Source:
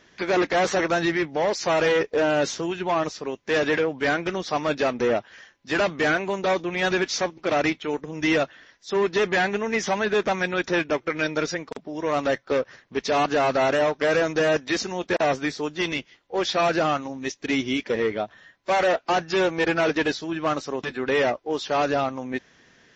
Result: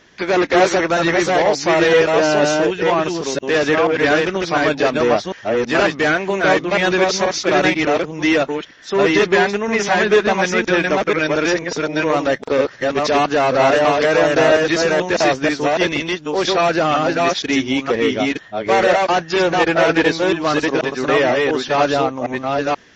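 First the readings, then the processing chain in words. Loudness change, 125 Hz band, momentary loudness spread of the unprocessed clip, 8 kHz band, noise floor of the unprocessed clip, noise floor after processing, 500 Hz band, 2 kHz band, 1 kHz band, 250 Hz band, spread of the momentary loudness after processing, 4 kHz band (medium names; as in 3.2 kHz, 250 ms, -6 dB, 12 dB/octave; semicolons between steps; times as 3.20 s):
+7.5 dB, +7.5 dB, 8 LU, no reading, -58 dBFS, -39 dBFS, +8.0 dB, +8.0 dB, +8.0 dB, +8.0 dB, 6 LU, +8.0 dB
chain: chunks repeated in reverse 484 ms, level -1.5 dB; trim +5.5 dB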